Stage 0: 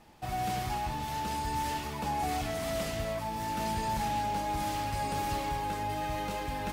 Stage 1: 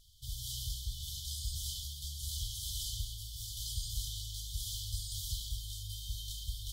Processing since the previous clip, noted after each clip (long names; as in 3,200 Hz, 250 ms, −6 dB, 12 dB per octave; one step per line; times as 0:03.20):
parametric band 140 Hz −13 dB 0.98 octaves
brick-wall band-stop 150–3,000 Hz
level +3 dB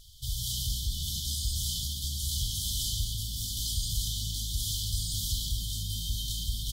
in parallel at 0 dB: brickwall limiter −35 dBFS, peak gain reduction 10.5 dB
on the sum: echo with shifted repeats 144 ms, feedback 46%, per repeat +57 Hz, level −13.5 dB
level +3.5 dB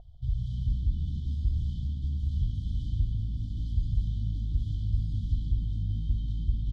low-pass with resonance 700 Hz, resonance Q 7.4
level +5.5 dB